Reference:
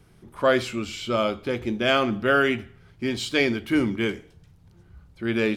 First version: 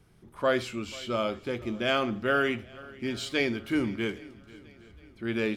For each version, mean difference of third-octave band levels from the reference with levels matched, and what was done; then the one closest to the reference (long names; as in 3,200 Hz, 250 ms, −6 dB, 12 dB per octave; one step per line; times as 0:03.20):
2.5 dB: feedback echo with a long and a short gap by turns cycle 814 ms, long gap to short 1.5 to 1, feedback 38%, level −21.5 dB
level −5.5 dB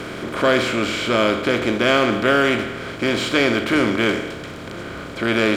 10.5 dB: compressor on every frequency bin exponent 0.4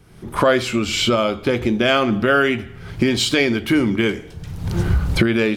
5.5 dB: camcorder AGC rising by 40 dB per second
level +4 dB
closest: first